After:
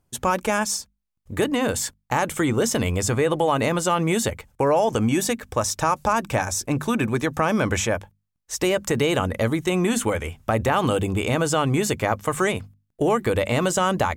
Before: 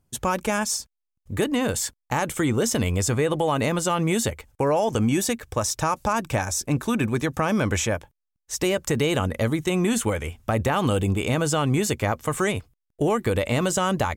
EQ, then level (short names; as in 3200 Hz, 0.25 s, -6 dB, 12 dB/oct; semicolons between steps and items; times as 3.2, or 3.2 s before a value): bell 950 Hz +3 dB 2.9 oct; notches 50/100/150/200/250 Hz; 0.0 dB